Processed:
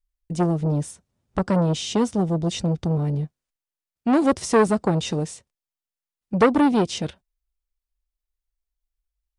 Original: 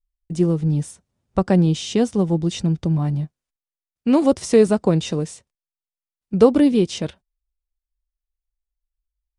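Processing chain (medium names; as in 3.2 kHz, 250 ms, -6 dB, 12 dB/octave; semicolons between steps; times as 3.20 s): transformer saturation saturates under 980 Hz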